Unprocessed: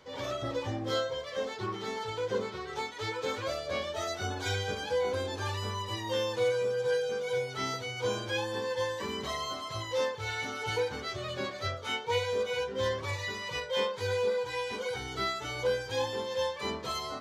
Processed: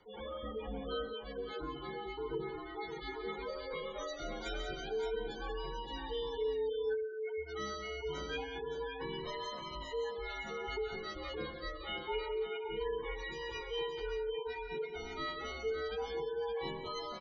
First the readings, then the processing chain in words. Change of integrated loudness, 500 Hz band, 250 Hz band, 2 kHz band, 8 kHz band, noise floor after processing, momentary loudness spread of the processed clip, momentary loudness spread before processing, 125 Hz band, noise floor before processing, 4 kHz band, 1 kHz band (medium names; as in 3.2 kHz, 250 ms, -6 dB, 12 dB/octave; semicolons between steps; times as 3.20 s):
-7.0 dB, -6.0 dB, -5.5 dB, -8.0 dB, -14.0 dB, -46 dBFS, 5 LU, 5 LU, -12.5 dB, -41 dBFS, -8.0 dB, -7.0 dB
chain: spectral gate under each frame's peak -15 dB strong; multi-tap echo 132/180/571 ms -13.5/-9.5/-7 dB; frequency shift -57 Hz; trim -7 dB